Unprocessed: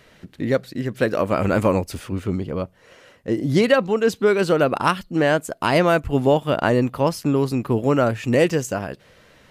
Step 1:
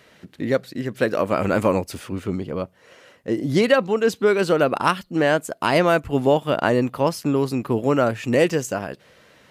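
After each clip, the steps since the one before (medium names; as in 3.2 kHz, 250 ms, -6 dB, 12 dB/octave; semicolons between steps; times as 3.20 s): high-pass 140 Hz 6 dB/octave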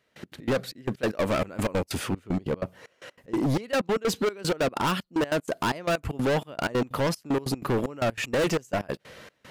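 in parallel at -0.5 dB: compression, threshold -25 dBFS, peak gain reduction 14 dB; on the sum: trance gate "..x.x.xxx" 189 bpm -24 dB; overload inside the chain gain 21.5 dB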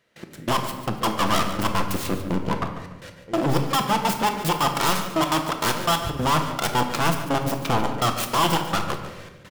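self-modulated delay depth 0.48 ms; feedback delay 145 ms, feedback 31%, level -12.5 dB; simulated room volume 530 m³, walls mixed, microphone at 0.77 m; trim +2.5 dB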